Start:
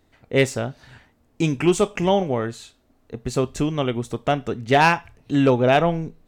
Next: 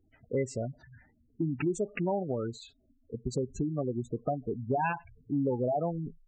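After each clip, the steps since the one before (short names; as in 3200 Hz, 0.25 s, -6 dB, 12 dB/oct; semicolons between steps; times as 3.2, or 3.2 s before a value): spectral gate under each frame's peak -10 dB strong; compressor 3:1, threshold -24 dBFS, peak gain reduction 8.5 dB; gain -4.5 dB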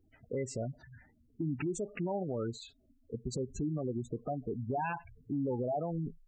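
limiter -27 dBFS, peak gain reduction 8.5 dB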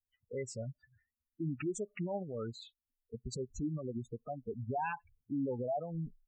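per-bin expansion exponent 2; gain +1 dB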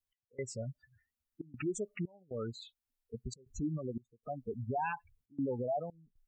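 step gate "x..xxxxxxxx.xxx" 117 bpm -24 dB; gain +1 dB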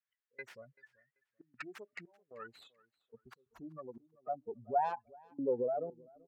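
tracing distortion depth 0.48 ms; feedback echo 0.386 s, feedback 21%, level -23 dB; band-pass sweep 1700 Hz -> 360 Hz, 2.78–6.09; gain +6.5 dB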